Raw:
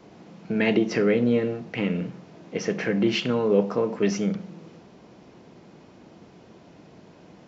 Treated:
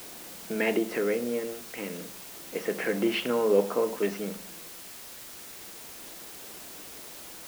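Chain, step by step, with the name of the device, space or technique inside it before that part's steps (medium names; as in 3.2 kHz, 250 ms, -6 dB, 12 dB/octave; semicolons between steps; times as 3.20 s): shortwave radio (band-pass 320–2800 Hz; tremolo 0.3 Hz, depth 53%; white noise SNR 13 dB)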